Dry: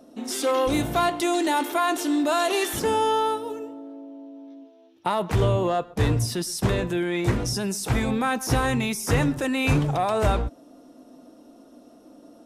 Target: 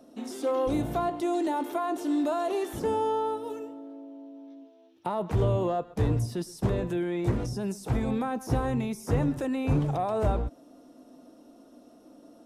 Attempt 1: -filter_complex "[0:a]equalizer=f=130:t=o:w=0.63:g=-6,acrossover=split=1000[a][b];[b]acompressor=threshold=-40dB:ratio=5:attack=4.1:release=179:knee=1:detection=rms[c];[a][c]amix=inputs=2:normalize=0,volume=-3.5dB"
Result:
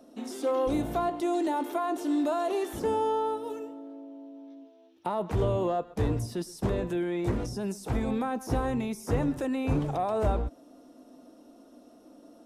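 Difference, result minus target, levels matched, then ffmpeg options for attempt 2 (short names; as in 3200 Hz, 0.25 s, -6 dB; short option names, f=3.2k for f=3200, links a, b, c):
125 Hz band -3.0 dB
-filter_complex "[0:a]acrossover=split=1000[a][b];[b]acompressor=threshold=-40dB:ratio=5:attack=4.1:release=179:knee=1:detection=rms[c];[a][c]amix=inputs=2:normalize=0,volume=-3.5dB"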